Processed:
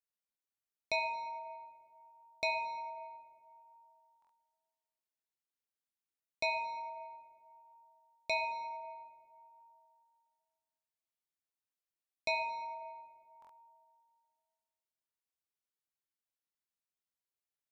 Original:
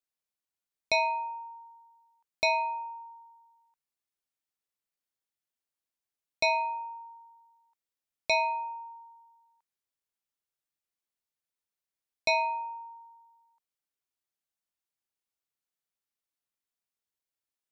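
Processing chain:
dynamic equaliser 5,200 Hz, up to −6 dB, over −49 dBFS, Q 2
dense smooth reverb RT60 2.3 s, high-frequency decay 0.45×, DRR 5 dB
buffer that repeats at 0:04.20/0:13.40, samples 1,024, times 3
level −7.5 dB

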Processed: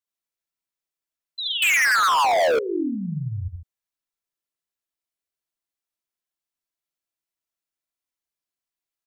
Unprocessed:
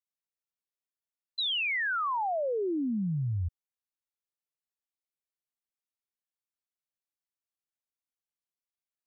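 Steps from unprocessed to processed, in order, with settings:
on a send: multi-tap delay 46/71/74/77/119/144 ms −14.5/−7/−6/−4.5/−15/−11 dB
0:01.62–0:02.59: on the sum: leveller curve on the samples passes 5
level +1 dB

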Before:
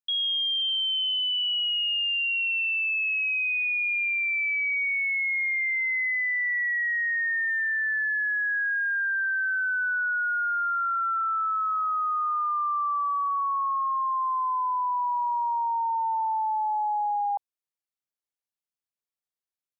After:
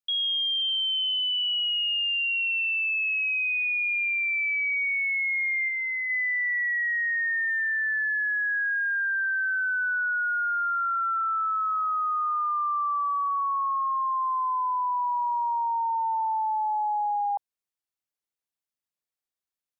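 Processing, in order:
0:05.68–0:06.10: dynamic equaliser 1,800 Hz, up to −4 dB, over −38 dBFS, Q 2.3

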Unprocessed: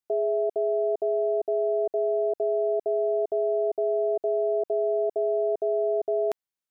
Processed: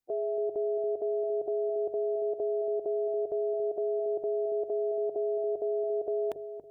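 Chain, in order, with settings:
spectral magnitudes quantised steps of 15 dB
low-shelf EQ 270 Hz +11 dB
mains-hum notches 50/100/150 Hz
brickwall limiter −25 dBFS, peak gain reduction 9 dB
on a send: delay with a low-pass on its return 280 ms, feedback 30%, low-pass 540 Hz, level −6.5 dB

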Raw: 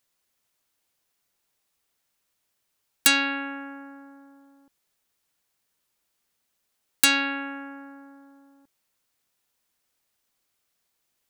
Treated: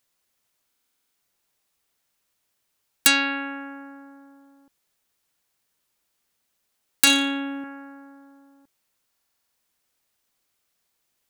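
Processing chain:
0:07.04–0:07.64: flutter between parallel walls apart 4.9 metres, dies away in 0.37 s
buffer that repeats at 0:00.67/0:09.08, samples 2,048, times 9
level +1.5 dB

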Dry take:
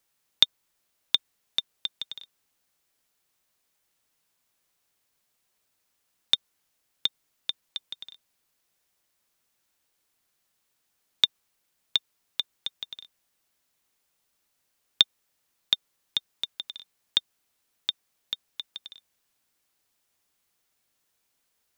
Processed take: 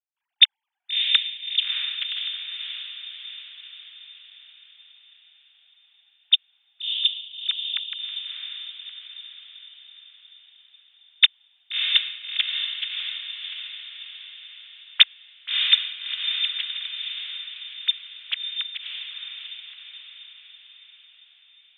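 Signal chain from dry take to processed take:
three sine waves on the formant tracks
gate pattern ".xxxxx.xxxx" 92 BPM −24 dB
feedback delay with all-pass diffusion 646 ms, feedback 52%, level −4 dB
level +6 dB

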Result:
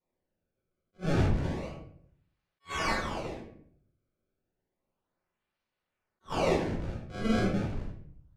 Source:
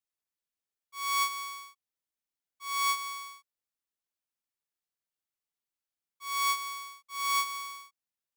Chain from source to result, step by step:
high-pass filter 910 Hz 24 dB per octave
in parallel at −0.5 dB: downward compressor, threshold −40 dBFS, peak gain reduction 15.5 dB
on the sum: sample-and-hold swept by an LFO 27×, swing 160% 0.31 Hz
high-frequency loss of the air 78 metres
convolution reverb RT60 0.65 s, pre-delay 5 ms, DRR −6 dB
level that may rise only so fast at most 380 dB per second
level −7.5 dB

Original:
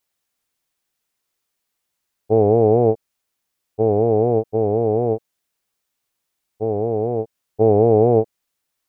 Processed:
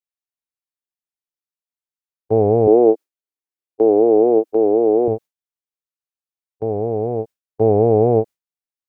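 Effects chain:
noise gate with hold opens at −16 dBFS
0:02.67–0:05.08: low shelf with overshoot 210 Hz −13.5 dB, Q 3

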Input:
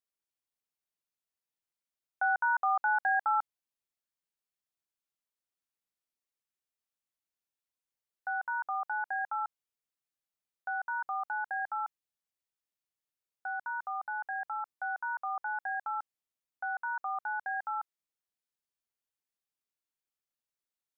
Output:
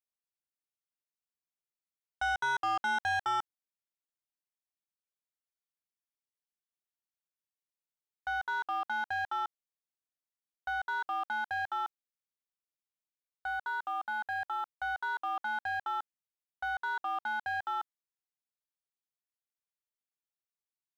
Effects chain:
leveller curve on the samples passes 2
level −5 dB

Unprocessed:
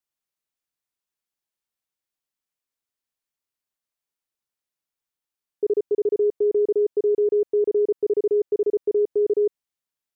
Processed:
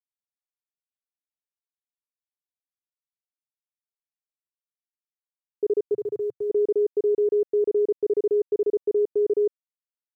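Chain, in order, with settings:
bit reduction 11 bits
0:05.94–0:06.50: graphic EQ with 10 bands 125 Hz +10 dB, 250 Hz −10 dB, 500 Hz −4 dB
level −1.5 dB

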